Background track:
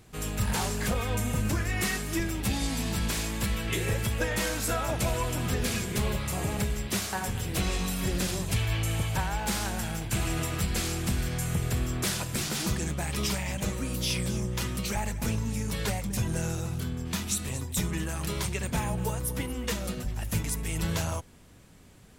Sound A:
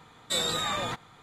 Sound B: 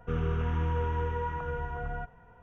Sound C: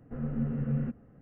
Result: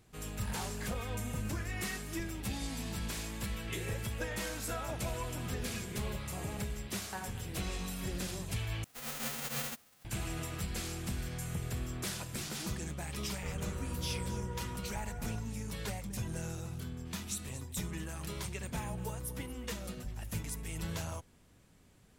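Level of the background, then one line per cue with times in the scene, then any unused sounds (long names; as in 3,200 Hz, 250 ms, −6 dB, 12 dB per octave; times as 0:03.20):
background track −9 dB
0:08.84: overwrite with C −8.5 dB + spectral envelope flattened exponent 0.1
0:13.35: mix in B −12 dB
not used: A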